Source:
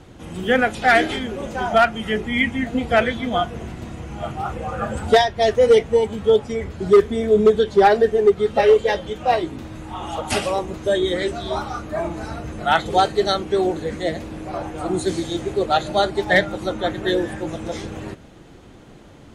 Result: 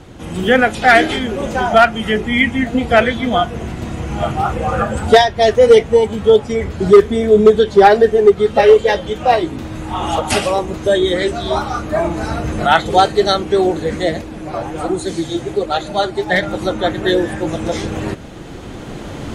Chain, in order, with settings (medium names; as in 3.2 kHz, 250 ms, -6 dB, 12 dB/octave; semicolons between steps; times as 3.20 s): recorder AGC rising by 6.5 dB/s; 14.21–16.43 s: flange 1.3 Hz, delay 1.7 ms, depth 7.3 ms, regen +42%; trim +5.5 dB